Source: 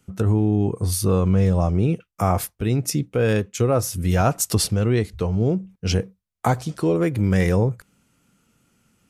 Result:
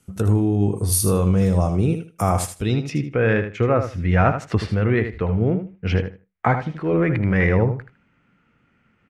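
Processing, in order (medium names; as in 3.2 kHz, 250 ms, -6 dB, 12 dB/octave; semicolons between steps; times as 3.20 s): 6.74–7.45 s: transient shaper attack -7 dB, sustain +7 dB; low-pass sweep 11 kHz -> 2 kHz, 2.30–3.02 s; feedback delay 78 ms, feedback 18%, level -9 dB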